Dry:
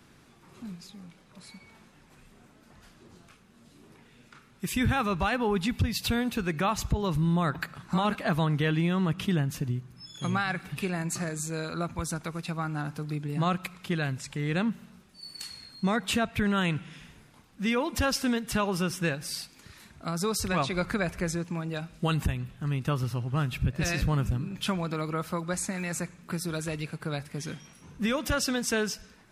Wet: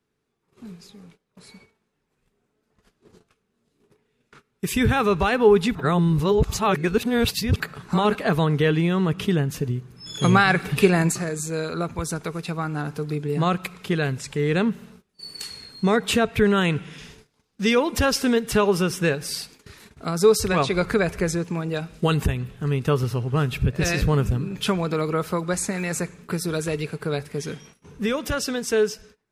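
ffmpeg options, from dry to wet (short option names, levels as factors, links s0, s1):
-filter_complex "[0:a]asettb=1/sr,asplit=3[s0][s1][s2];[s0]atrim=end=16.984[s3];[s1]atrim=start=16.98:end=17.8,asetpts=PTS-STARTPTS,afade=t=in:d=0.004:c=qsin,afade=t=out:st=0.816:d=0.004:c=qsin,equalizer=f=5200:t=o:w=1.2:g=8[s4];[s2]atrim=start=17.796[s5];[s3][s4]acrossfade=d=0.004:c1=hsin:c2=qsin[s6];[s6][s5]acrossfade=d=0.004:c1=qsin:c2=hsin,asplit=5[s7][s8][s9][s10][s11];[s7]atrim=end=5.752[s12];[s8]atrim=start=5.748:end=7.602,asetpts=PTS-STARTPTS,areverse[s13];[s9]atrim=start=7.598:end=10.062[s14];[s10]atrim=start=10.058:end=11.122,asetpts=PTS-STARTPTS,volume=2.37[s15];[s11]atrim=start=11.118[s16];[s12][s13]acrossfade=d=0.004:c1=hsin:c2=hsin[s17];[s17][s14]acrossfade=d=0.004:c1=hsin:c2=hsin[s18];[s18][s15]acrossfade=d=0.004:c1=hsin:c2=hsin[s19];[s19][s16]acrossfade=d=0.004:c1=hsin:c2=hsin,agate=range=0.0891:threshold=0.00282:ratio=16:detection=peak,equalizer=f=430:t=o:w=0.27:g=12,dynaudnorm=f=530:g=9:m=1.88"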